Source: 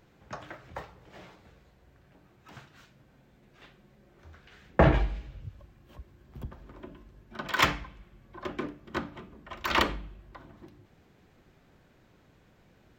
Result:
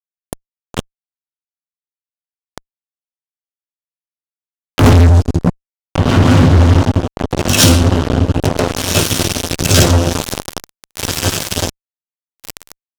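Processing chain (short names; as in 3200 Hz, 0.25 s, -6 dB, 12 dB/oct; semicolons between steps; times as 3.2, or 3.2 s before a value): delay-line pitch shifter +9.5 st; in parallel at -5 dB: crossover distortion -52 dBFS; on the sum: Butterworth band-stop 2000 Hz, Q 1.9; spectral gain 9.92–10.25, 500–1200 Hz +9 dB; LPF 11000 Hz 12 dB/oct; on a send: diffused feedback echo 1.543 s, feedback 50%, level -8 dB; on the sum: rotary speaker horn 6.7 Hz, later 0.85 Hz, at 5.84; graphic EQ 125/500/1000/2000/4000 Hz +3/-6/-12/-7/-10 dB; fuzz box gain 38 dB, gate -40 dBFS; compressor 5:1, threshold -29 dBFS, peak gain reduction 13.5 dB; maximiser +22.5 dB; gain -1 dB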